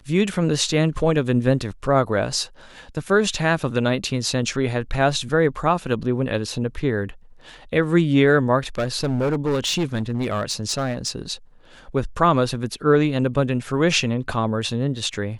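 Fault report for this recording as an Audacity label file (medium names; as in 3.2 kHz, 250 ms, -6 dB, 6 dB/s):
8.780000	11.100000	clipped -17.5 dBFS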